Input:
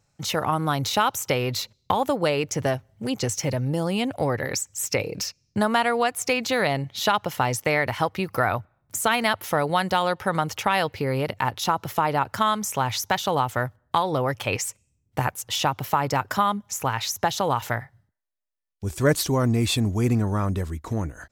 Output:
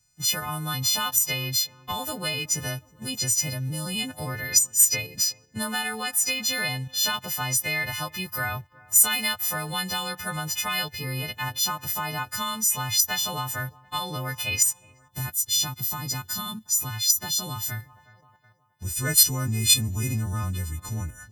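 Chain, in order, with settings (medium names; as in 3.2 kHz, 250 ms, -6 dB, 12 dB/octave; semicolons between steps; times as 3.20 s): partials quantised in pitch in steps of 3 st; bass shelf 260 Hz +11 dB; on a send: feedback echo behind a low-pass 367 ms, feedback 47%, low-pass 1.7 kHz, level -23 dB; on the sum: time-frequency box 15.11–17.90 s, 410–3300 Hz -8 dB; amplifier tone stack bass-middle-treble 5-5-5; in parallel at 0 dB: level held to a coarse grid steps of 22 dB; on the sum: trim +1.5 dB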